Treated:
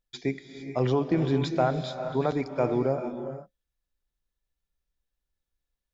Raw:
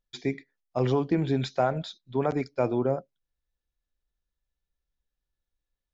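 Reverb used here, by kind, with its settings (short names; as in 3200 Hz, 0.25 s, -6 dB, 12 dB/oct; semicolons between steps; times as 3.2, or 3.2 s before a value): non-linear reverb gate 0.48 s rising, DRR 8 dB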